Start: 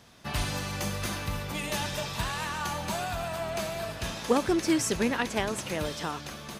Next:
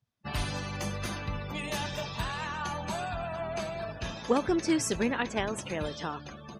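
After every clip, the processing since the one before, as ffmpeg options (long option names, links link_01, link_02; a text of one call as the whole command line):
ffmpeg -i in.wav -af "afftdn=noise_reduction=31:noise_floor=-41,volume=-1.5dB" out.wav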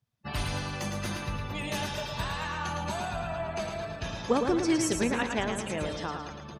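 ffmpeg -i in.wav -af "aecho=1:1:110|220|330|440|550|660:0.531|0.255|0.122|0.0587|0.0282|0.0135" out.wav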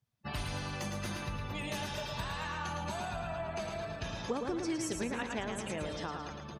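ffmpeg -i in.wav -af "acompressor=threshold=-33dB:ratio=2.5,volume=-2dB" out.wav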